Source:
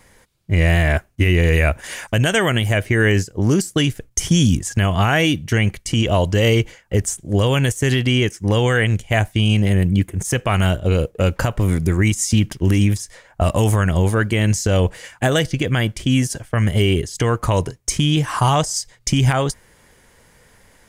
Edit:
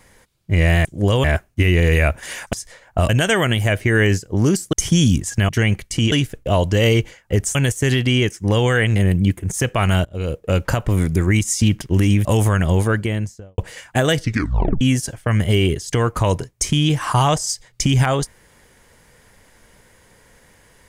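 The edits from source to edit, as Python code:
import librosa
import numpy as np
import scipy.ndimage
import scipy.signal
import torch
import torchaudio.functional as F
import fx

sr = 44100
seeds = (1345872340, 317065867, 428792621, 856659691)

y = fx.studio_fade_out(x, sr, start_s=14.09, length_s=0.76)
y = fx.edit(y, sr, fx.move(start_s=3.78, length_s=0.34, to_s=6.07),
    fx.cut(start_s=4.88, length_s=0.56),
    fx.move(start_s=7.16, length_s=0.39, to_s=0.85),
    fx.cut(start_s=8.96, length_s=0.71),
    fx.fade_in_from(start_s=10.76, length_s=0.67, curve='qsin', floor_db=-22.0),
    fx.move(start_s=12.96, length_s=0.56, to_s=2.14),
    fx.tape_stop(start_s=15.48, length_s=0.6), tone=tone)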